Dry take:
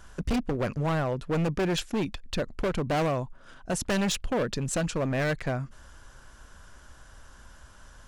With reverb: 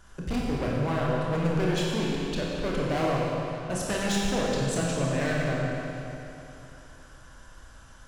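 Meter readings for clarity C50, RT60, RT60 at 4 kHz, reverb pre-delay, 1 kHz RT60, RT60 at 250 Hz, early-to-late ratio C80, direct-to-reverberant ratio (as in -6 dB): -2.5 dB, 3.0 s, 2.7 s, 25 ms, 3.0 s, 3.0 s, -1.0 dB, -4.5 dB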